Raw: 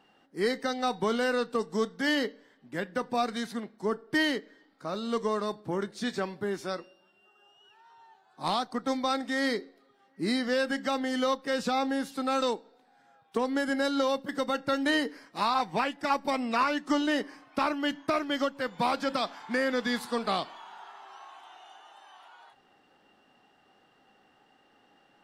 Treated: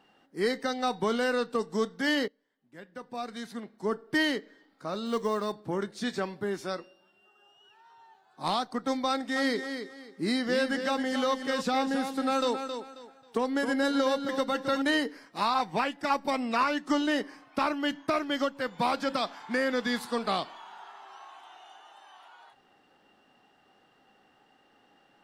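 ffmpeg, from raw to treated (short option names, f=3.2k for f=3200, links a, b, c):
-filter_complex "[0:a]asettb=1/sr,asplit=3[a][b][c];[a]atrim=end=5.064[d];[b]atrim=start=5.06:end=5.52,asetpts=PTS-STARTPTS,afade=t=in:d=0.004:c=qsin,afade=t=out:st=0.456:d=0.004:c=qsin,acrusher=bits=8:mode=log:mix=0:aa=0.000001[e];[c]atrim=start=5.516[f];[d][e]acrossfade=d=0.004:c1=hsin:c2=qsin[g];[g][f]acrossfade=d=0.004:c1=qsin:c2=hsin,asettb=1/sr,asplit=3[h][i][j];[h]atrim=end=9.094[k];[i]atrim=start=9.09:end=14.82,asetpts=PTS-STARTPTS,afade=t=in:d=0.004:c=qsin,afade=t=out:st=5.726:d=0.004:c=qsin,aecho=1:1:269|538|807:0.398|0.104|0.0269,atrim=end_sample=252693[l];[j]atrim=start=14.816[m];[k][l]acrossfade=d=0.004:c1=hsin:c2=qsin[n];[n][m]acrossfade=d=0.004:c1=qsin:c2=hsin,asplit=2[o][p];[o]atrim=end=2.28,asetpts=PTS-STARTPTS,afade=t=out:st=2.276:d=0.004:c=hsin:silence=0.112202[q];[p]atrim=start=2.28,asetpts=PTS-STARTPTS,afade=t=in:d=1.64:c=qua:silence=0.112202[r];[q][r]concat=n=2:v=0:a=1"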